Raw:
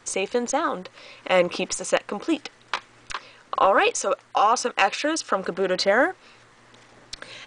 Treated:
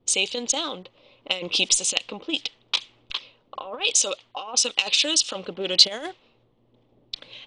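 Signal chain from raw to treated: negative-ratio compressor -21 dBFS, ratio -0.5; resonant high shelf 2300 Hz +12.5 dB, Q 3; low-pass opened by the level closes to 410 Hz, open at -12 dBFS; gain -7 dB

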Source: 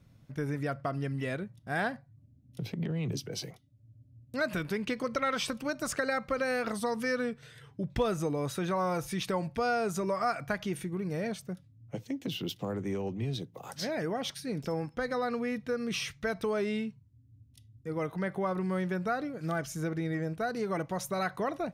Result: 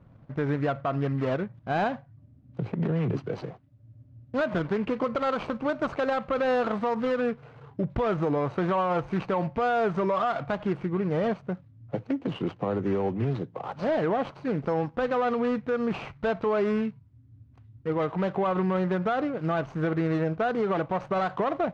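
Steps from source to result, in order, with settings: median filter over 25 samples; bell 1100 Hz +9.5 dB 2.6 oct; limiter -22.5 dBFS, peak gain reduction 10 dB; air absorption 140 m; gain +5 dB

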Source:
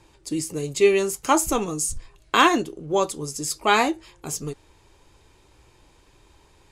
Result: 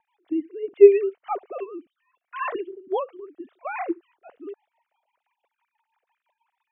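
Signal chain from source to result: sine-wave speech; air absorption 340 m; rotary speaker horn 6 Hz; bell 710 Hz +4.5 dB 0.37 oct; gain +1 dB

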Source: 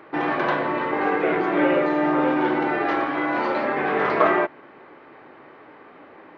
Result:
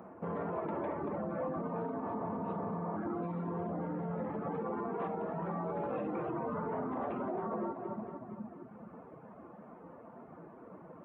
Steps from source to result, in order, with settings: high shelf 2200 Hz -8.5 dB; on a send: split-band echo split 460 Hz, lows 0.245 s, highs 0.133 s, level -8 dB; on the sum: reverb removal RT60 0.92 s; compressor, threshold -27 dBFS, peak gain reduction 12 dB; speed mistake 78 rpm record played at 45 rpm; spectral repair 2.05–2.94, 300–2300 Hz before; limiter -26.5 dBFS, peak gain reduction 9 dB; tilt +2 dB/oct

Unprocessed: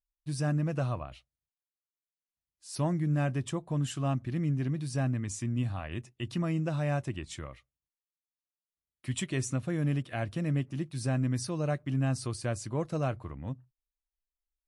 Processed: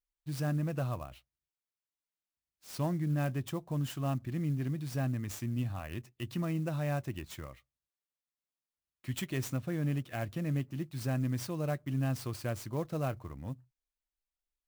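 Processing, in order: clock jitter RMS 0.022 ms; gain -3 dB

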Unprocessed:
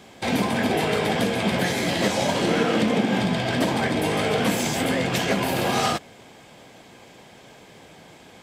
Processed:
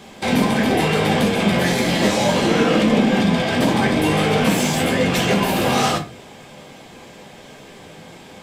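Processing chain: in parallel at -4 dB: soft clip -25.5 dBFS, distortion -9 dB; on the sum: reverb RT60 0.35 s, pre-delay 5 ms, DRR 2.5 dB

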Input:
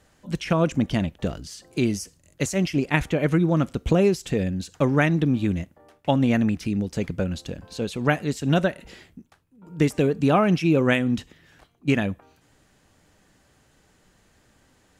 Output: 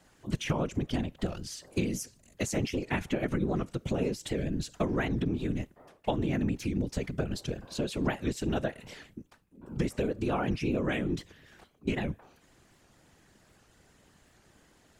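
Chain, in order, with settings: compressor, threshold -25 dBFS, peak gain reduction 10.5 dB; whisperiser; record warp 78 rpm, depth 160 cents; gain -1.5 dB

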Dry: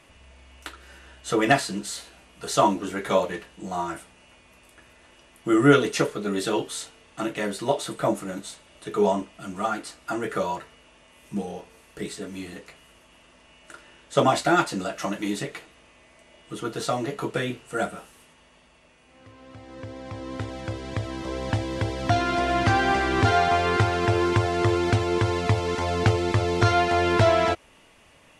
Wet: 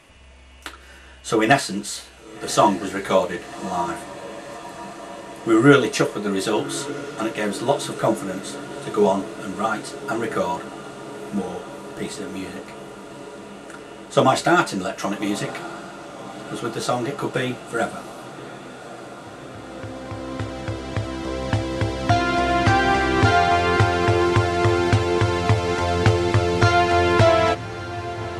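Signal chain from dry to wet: diffused feedback echo 1.16 s, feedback 79%, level -15.5 dB; gain +3.5 dB

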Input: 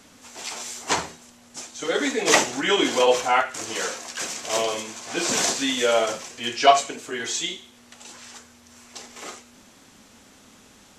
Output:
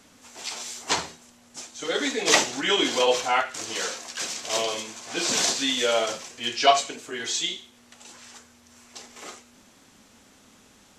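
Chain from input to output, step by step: dynamic EQ 4100 Hz, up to +6 dB, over -40 dBFS, Q 1.1; gain -3.5 dB

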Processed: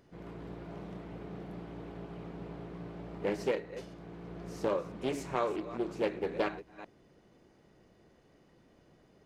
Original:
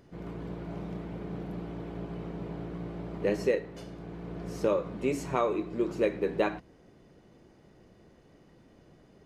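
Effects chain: reverse delay 0.214 s, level -14 dB; low shelf 380 Hz -4 dB; Doppler distortion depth 0.34 ms; gain -3 dB

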